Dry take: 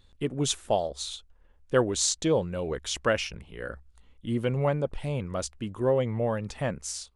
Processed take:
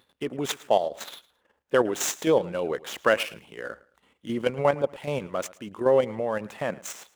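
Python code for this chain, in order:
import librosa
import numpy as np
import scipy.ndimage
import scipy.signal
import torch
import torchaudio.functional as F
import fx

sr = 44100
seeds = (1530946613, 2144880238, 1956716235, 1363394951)

y = scipy.signal.medfilt(x, 9)
y = scipy.signal.sosfilt(scipy.signal.butter(2, 160.0, 'highpass', fs=sr, output='sos'), y)
y = fx.low_shelf(y, sr, hz=240.0, db=-10.5)
y = fx.level_steps(y, sr, step_db=9)
y = fx.echo_feedback(y, sr, ms=109, feedback_pct=28, wet_db=-20.5)
y = F.gain(torch.from_numpy(y), 9.0).numpy()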